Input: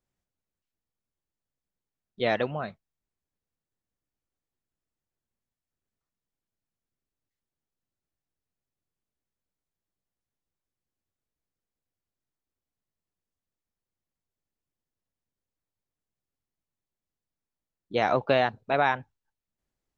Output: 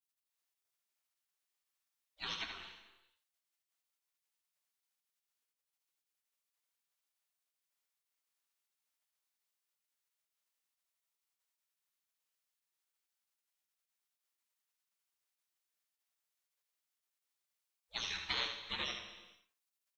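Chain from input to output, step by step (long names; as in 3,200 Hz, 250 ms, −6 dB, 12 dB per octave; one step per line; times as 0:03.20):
gate on every frequency bin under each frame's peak −30 dB weak
on a send: single-tap delay 77 ms −7.5 dB
on the sum: reverb whose tail is shaped and stops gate 480 ms falling, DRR 7 dB
level +7 dB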